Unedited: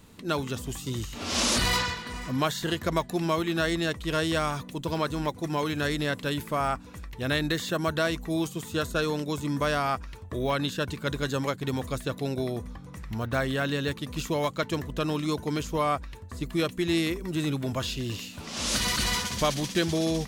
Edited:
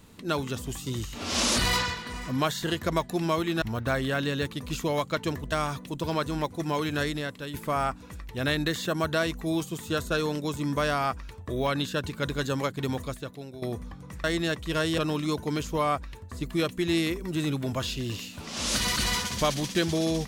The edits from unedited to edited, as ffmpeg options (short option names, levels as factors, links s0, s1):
-filter_complex "[0:a]asplit=7[s0][s1][s2][s3][s4][s5][s6];[s0]atrim=end=3.622[s7];[s1]atrim=start=13.078:end=14.982[s8];[s2]atrim=start=4.358:end=6.38,asetpts=PTS-STARTPTS,afade=t=out:st=1.502:d=0.52:c=qua:silence=0.398107[s9];[s3]atrim=start=6.38:end=12.46,asetpts=PTS-STARTPTS,afade=t=in:d=0.004:c=hsin:silence=0.398107,afade=t=out:st=5.43:d=0.65:c=qua:silence=0.223872[s10];[s4]atrim=start=12.46:end=13.082,asetpts=PTS-STARTPTS,afade=t=in:d=0.004:c=hsin:silence=0.223872[s11];[s5]atrim=start=3.618:end=4.362[s12];[s6]atrim=start=14.978[s13];[s7][s8]acrossfade=d=0.004:c1=hsin:c2=hsin[s14];[s9][s10][s11]concat=n=3:v=0:a=1[s15];[s14][s15]acrossfade=d=0.004:c1=hsin:c2=hsin[s16];[s16][s12]acrossfade=d=0.004:c1=hsin:c2=hsin[s17];[s17][s13]acrossfade=d=0.004:c1=hsin:c2=hsin"